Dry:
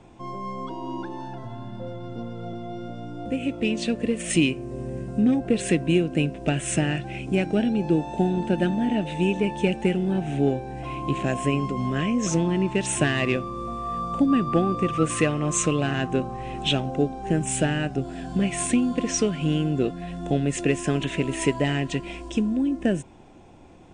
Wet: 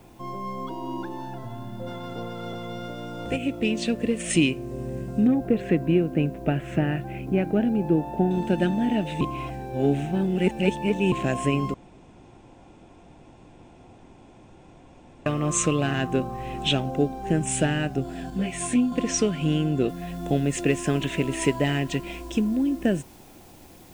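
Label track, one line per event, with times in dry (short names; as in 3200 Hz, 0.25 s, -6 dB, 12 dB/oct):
1.860000	3.360000	spectral limiter ceiling under each frame's peak by 15 dB
5.270000	8.310000	LPF 1800 Hz
9.210000	11.120000	reverse
11.740000	15.260000	room tone
18.300000	18.920000	detuned doubles each way 14 cents
19.890000	19.890000	noise floor step -64 dB -55 dB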